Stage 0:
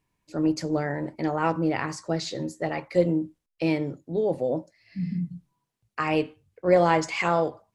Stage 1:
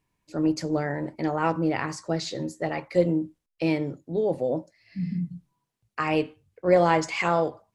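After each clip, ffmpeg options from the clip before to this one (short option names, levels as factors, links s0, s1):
-af anull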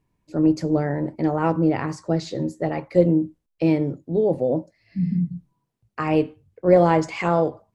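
-af "tiltshelf=f=890:g=5.5,volume=1.19"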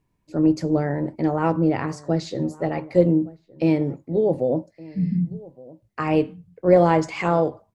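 -filter_complex "[0:a]asplit=2[s0][s1];[s1]adelay=1166,volume=0.0891,highshelf=f=4000:g=-26.2[s2];[s0][s2]amix=inputs=2:normalize=0"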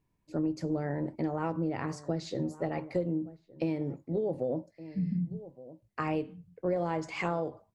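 -af "acompressor=threshold=0.0794:ratio=6,volume=0.531"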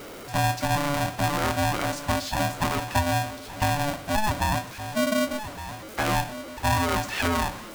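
-af "aeval=exprs='val(0)+0.5*0.00944*sgn(val(0))':c=same,aeval=exprs='val(0)*sgn(sin(2*PI*430*n/s))':c=same,volume=2"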